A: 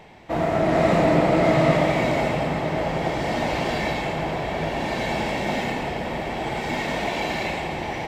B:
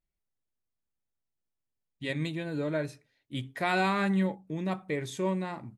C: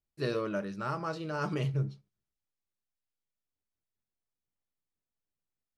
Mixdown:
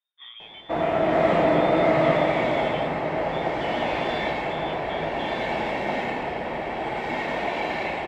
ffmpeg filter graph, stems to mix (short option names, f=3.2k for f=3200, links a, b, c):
-filter_complex "[0:a]adelay=400,volume=0dB[a];[1:a]volume=1dB[b];[2:a]flanger=delay=15.5:depth=3.9:speed=0.66,volume=2dB[c];[b][c]amix=inputs=2:normalize=0,lowpass=f=3.1k:t=q:w=0.5098,lowpass=f=3.1k:t=q:w=0.6013,lowpass=f=3.1k:t=q:w=0.9,lowpass=f=3.1k:t=q:w=2.563,afreqshift=-3700,acompressor=threshold=-43dB:ratio=2,volume=0dB[d];[a][d]amix=inputs=2:normalize=0,bass=f=250:g=-8,treble=f=4k:g=-14"